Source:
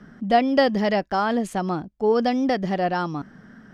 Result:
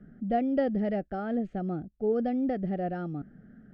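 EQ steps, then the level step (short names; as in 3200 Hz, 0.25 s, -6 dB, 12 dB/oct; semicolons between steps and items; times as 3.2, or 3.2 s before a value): Butterworth band-stop 1000 Hz, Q 2; tape spacing loss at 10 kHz 39 dB; tilt -1.5 dB/oct; -7.5 dB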